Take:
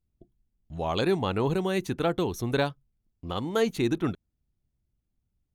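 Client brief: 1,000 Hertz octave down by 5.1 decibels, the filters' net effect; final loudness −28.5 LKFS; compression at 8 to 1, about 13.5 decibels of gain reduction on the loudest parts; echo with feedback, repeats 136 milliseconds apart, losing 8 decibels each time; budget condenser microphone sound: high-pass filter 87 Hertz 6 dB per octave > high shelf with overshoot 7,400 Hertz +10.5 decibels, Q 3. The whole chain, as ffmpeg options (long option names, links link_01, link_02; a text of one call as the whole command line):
ffmpeg -i in.wav -af "equalizer=frequency=1000:width_type=o:gain=-7,acompressor=threshold=-36dB:ratio=8,highpass=frequency=87:poles=1,highshelf=frequency=7400:width_type=q:width=3:gain=10.5,aecho=1:1:136|272|408|544|680:0.398|0.159|0.0637|0.0255|0.0102,volume=11.5dB" out.wav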